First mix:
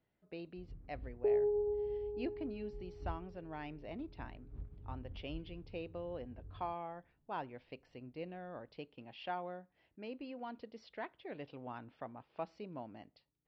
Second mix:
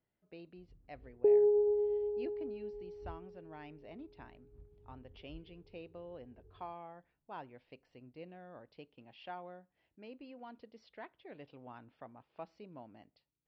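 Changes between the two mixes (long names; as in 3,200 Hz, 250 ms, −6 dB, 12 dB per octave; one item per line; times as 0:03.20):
speech −5.0 dB
first sound −11.0 dB
second sound: add parametric band 320 Hz +6 dB 2.4 octaves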